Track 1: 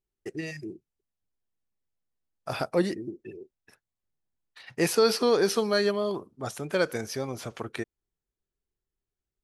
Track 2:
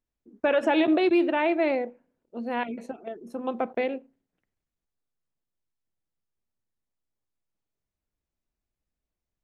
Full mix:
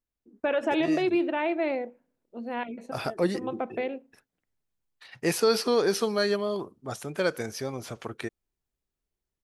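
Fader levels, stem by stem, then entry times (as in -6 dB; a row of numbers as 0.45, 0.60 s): -1.0, -3.5 dB; 0.45, 0.00 s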